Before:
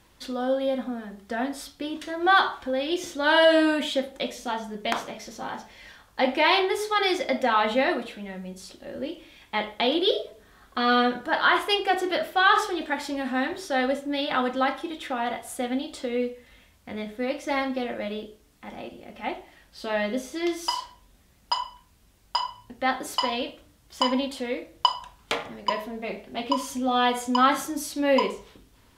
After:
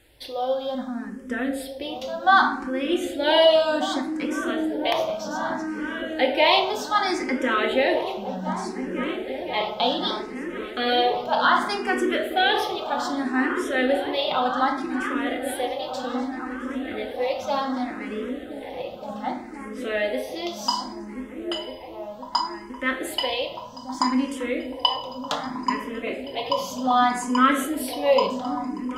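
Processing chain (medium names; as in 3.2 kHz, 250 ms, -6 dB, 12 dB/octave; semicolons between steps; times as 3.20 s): on a send: delay with an opening low-pass 514 ms, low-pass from 200 Hz, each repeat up 1 oct, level -3 dB; on the sum: simulated room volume 340 m³, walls mixed, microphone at 0.46 m; barber-pole phaser +0.65 Hz; trim +3.5 dB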